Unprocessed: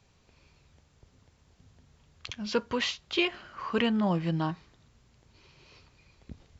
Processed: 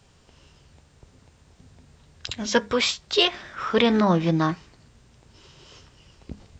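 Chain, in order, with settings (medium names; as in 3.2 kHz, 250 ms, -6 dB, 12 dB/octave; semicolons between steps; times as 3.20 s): de-hum 101.7 Hz, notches 2; formant shift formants +3 st; trim +7.5 dB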